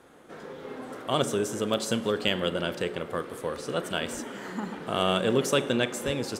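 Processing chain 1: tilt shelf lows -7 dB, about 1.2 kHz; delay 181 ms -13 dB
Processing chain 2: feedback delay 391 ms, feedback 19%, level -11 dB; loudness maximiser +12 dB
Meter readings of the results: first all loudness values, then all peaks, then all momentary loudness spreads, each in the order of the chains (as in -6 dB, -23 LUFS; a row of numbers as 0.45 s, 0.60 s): -28.0 LUFS, -17.0 LUFS; -6.0 dBFS, -1.0 dBFS; 15 LU, 14 LU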